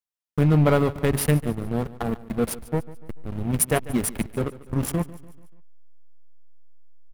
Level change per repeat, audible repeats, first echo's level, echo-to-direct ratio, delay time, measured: -6.5 dB, 3, -18.0 dB, -17.0 dB, 145 ms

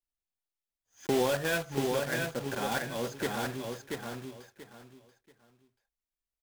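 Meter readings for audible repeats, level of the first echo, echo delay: 3, -4.0 dB, 684 ms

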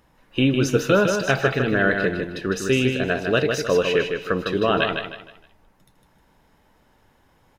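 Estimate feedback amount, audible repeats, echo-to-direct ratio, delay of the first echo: 34%, 4, -5.0 dB, 155 ms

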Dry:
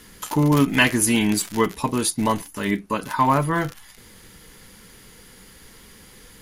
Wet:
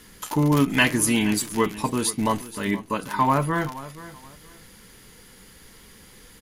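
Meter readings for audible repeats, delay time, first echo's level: 2, 475 ms, -16.5 dB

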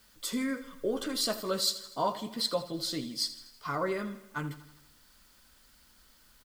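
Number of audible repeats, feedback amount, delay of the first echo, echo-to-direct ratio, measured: 5, 56%, 81 ms, -13.0 dB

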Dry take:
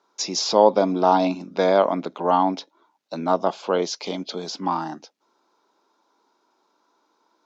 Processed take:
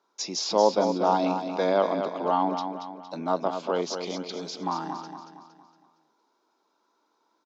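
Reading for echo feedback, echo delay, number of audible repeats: 45%, 231 ms, 4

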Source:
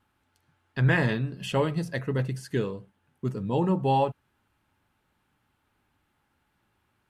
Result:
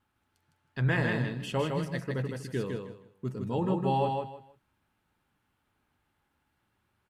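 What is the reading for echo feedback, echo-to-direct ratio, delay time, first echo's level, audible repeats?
23%, -4.0 dB, 158 ms, -4.0 dB, 3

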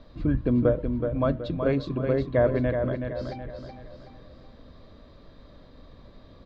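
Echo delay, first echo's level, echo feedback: 374 ms, -6.5 dB, 42%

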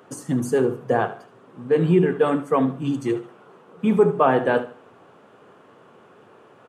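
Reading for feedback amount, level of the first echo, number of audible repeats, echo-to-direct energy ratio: 31%, -14.5 dB, 3, -14.0 dB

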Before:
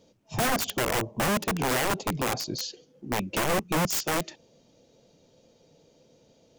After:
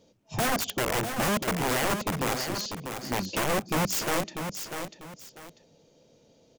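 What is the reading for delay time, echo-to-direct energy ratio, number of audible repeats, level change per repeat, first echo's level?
644 ms, -7.0 dB, 2, -11.0 dB, -7.5 dB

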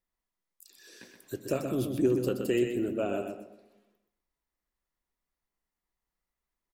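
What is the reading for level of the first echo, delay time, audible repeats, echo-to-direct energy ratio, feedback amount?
-7.0 dB, 125 ms, 3, -6.5 dB, 25%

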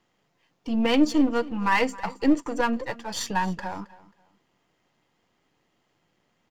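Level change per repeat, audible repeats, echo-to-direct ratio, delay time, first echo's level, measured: -11.0 dB, 2, -19.5 dB, 269 ms, -20.0 dB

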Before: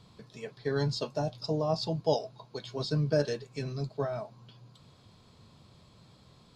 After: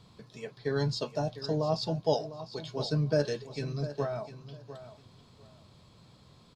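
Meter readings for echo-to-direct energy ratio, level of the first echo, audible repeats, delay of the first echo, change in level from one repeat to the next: -13.5 dB, -13.5 dB, 2, 702 ms, -14.0 dB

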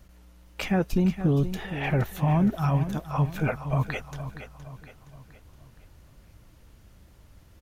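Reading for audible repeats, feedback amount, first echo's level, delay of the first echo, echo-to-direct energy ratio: 4, 45%, -11.5 dB, 468 ms, -10.5 dB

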